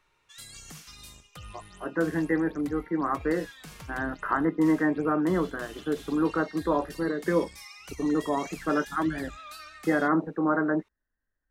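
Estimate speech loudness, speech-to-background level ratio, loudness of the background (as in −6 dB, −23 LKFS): −28.0 LKFS, 17.5 dB, −45.5 LKFS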